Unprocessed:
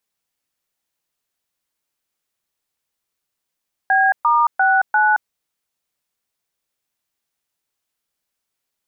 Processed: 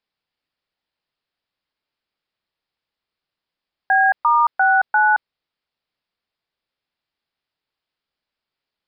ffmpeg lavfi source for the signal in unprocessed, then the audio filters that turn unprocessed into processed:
-f lavfi -i "aevalsrc='0.188*clip(min(mod(t,0.347),0.222-mod(t,0.347))/0.002,0,1)*(eq(floor(t/0.347),0)*(sin(2*PI*770*mod(t,0.347))+sin(2*PI*1633*mod(t,0.347)))+eq(floor(t/0.347),1)*(sin(2*PI*941*mod(t,0.347))+sin(2*PI*1209*mod(t,0.347)))+eq(floor(t/0.347),2)*(sin(2*PI*770*mod(t,0.347))+sin(2*PI*1477*mod(t,0.347)))+eq(floor(t/0.347),3)*(sin(2*PI*852*mod(t,0.347))+sin(2*PI*1477*mod(t,0.347))))':duration=1.388:sample_rate=44100"
-af "aresample=11025,aresample=44100"

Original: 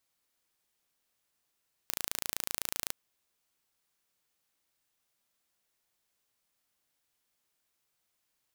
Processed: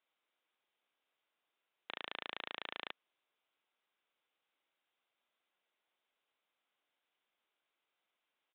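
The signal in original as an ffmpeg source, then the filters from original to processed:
-f lavfi -i "aevalsrc='0.531*eq(mod(n,1581),0)':duration=1.02:sample_rate=44100"
-af "highpass=340,bandreject=frequency=1800:width=16,aresample=8000,aresample=44100"

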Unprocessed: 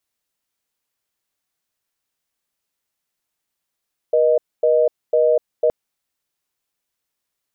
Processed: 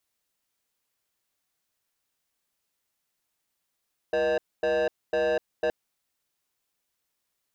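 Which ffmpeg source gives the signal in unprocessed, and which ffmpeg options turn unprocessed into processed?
-f lavfi -i "aevalsrc='0.178*(sin(2*PI*480*t)+sin(2*PI*620*t))*clip(min(mod(t,0.5),0.25-mod(t,0.5))/0.005,0,1)':duration=1.57:sample_rate=44100"
-af "asoftclip=type=tanh:threshold=-23dB"

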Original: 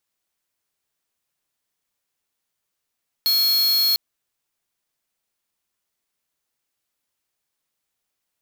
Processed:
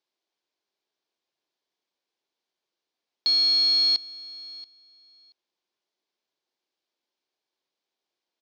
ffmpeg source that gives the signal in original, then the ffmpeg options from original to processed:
-f lavfi -i "aevalsrc='0.119*(2*lt(mod(4310*t,1),0.5)-1)':duration=0.7:sample_rate=44100"
-af "highpass=280,equalizer=frequency=360:width_type=q:width=4:gain=7,equalizer=frequency=1300:width_type=q:width=4:gain=-7,equalizer=frequency=1900:width_type=q:width=4:gain=-6,equalizer=frequency=2700:width_type=q:width=4:gain=-4,lowpass=frequency=5100:width=0.5412,lowpass=frequency=5100:width=1.3066,aecho=1:1:680|1360:0.1|0.016"

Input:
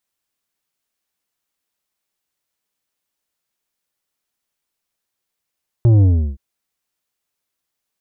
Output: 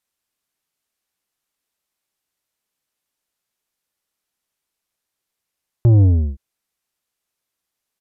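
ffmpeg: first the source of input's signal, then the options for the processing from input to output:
-f lavfi -i "aevalsrc='0.355*clip((0.52-t)/0.35,0,1)*tanh(2.66*sin(2*PI*120*0.52/log(65/120)*(exp(log(65/120)*t/0.52)-1)))/tanh(2.66)':duration=0.52:sample_rate=44100"
-af "aresample=32000,aresample=44100"

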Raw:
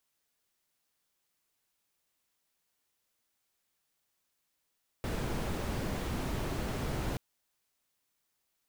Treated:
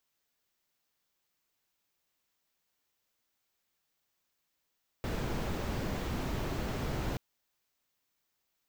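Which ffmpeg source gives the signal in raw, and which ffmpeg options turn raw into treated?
-f lavfi -i "anoisesrc=color=brown:amplitude=0.0933:duration=2.13:sample_rate=44100:seed=1"
-af "equalizer=frequency=9800:width_type=o:width=0.44:gain=-7.5"

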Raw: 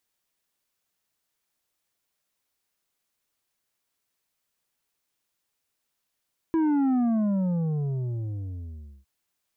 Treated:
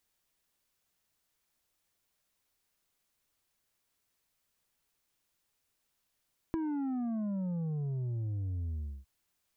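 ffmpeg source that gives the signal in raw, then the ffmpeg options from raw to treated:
-f lavfi -i "aevalsrc='0.0891*clip((2.51-t)/2.12,0,1)*tanh(2.24*sin(2*PI*330*2.51/log(65/330)*(exp(log(65/330)*t/2.51)-1)))/tanh(2.24)':duration=2.51:sample_rate=44100"
-af "lowshelf=frequency=100:gain=8.5,acompressor=threshold=-33dB:ratio=12"

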